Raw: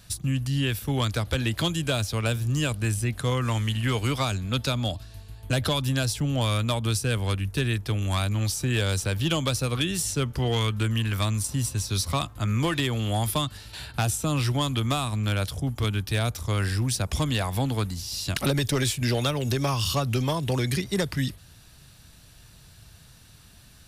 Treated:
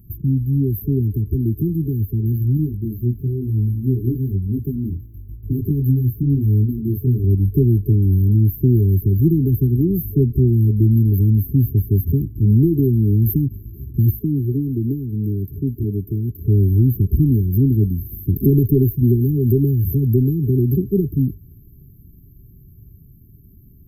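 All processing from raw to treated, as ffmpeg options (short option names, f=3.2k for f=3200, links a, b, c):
-filter_complex "[0:a]asettb=1/sr,asplit=3[a][b][c];[a]atrim=end=2.574[d];[b]atrim=start=2.57:end=7.24,asetpts=PTS-STARTPTS,afade=t=in:d=0.004:c=qsin,afade=t=out:st=4.666:d=0.004:c=qsin,aeval=exprs='sgn(val(0))*max(abs(val(0))-0.00112,0)':c=same,flanger=delay=19:depth=5.4:speed=1[e];[c]atrim=start=7.236[f];[d][e]acrossfade=d=0.004:c1=hsin:c2=qsin[g];[g][f]acrossfade=d=0.004:c1=qsin:c2=hsin,asettb=1/sr,asplit=3[h][i][j];[h]atrim=end=14.194[k];[i]atrim=start=14.19:end=16.46,asetpts=PTS-STARTPTS,afade=t=in:d=0.004:c=qsin,afade=t=out:st=2.266:d=0.004:c=qsin,lowshelf=f=190:g=-10.5,acrossover=split=3000[l][m];[m]acompressor=threshold=-41dB:ratio=4:attack=1:release=60[n];[l][n]amix=inputs=2:normalize=0[o];[j]atrim=start=16.456[p];[k][o]acrossfade=d=0.004:c1=hsin:c2=qsin[q];[q][p]acrossfade=d=0.004:c1=qsin:c2=hsin,dynaudnorm=f=680:g=13:m=4dB,afftfilt=real='re*(1-between(b*sr/4096,430,12000))':imag='im*(1-between(b*sr/4096,430,12000))':win_size=4096:overlap=0.75,volume=8dB"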